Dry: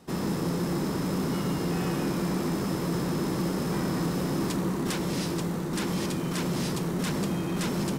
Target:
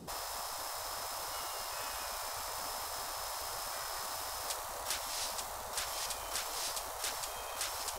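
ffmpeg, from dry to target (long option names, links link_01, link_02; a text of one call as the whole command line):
ffmpeg -i in.wav -filter_complex "[0:a]asplit=2[link_01][link_02];[link_02]alimiter=level_in=6dB:limit=-24dB:level=0:latency=1,volume=-6dB,volume=-1.5dB[link_03];[link_01][link_03]amix=inputs=2:normalize=0,equalizer=frequency=2000:width=0.68:gain=-8.5,afftfilt=real='re*lt(hypot(re,im),0.0501)':imag='im*lt(hypot(re,im),0.0501)':win_size=1024:overlap=0.75" out.wav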